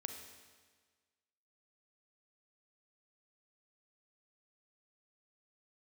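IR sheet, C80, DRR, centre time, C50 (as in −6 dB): 7.5 dB, 5.0 dB, 35 ms, 5.5 dB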